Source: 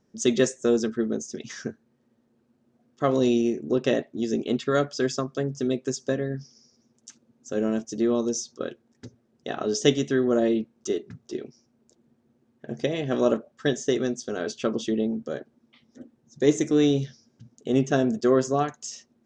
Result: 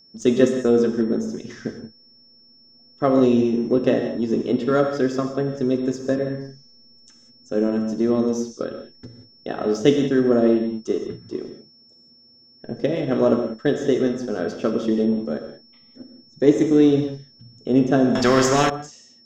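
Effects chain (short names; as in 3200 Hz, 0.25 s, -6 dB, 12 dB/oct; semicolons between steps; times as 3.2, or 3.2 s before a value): high shelf 2400 Hz -11.5 dB; non-linear reverb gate 0.21 s flat, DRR 4 dB; in parallel at -8 dB: backlash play -29.5 dBFS; on the sum: whine 5400 Hz -52 dBFS; 18.15–18.7 spectral compressor 2:1; gain +1.5 dB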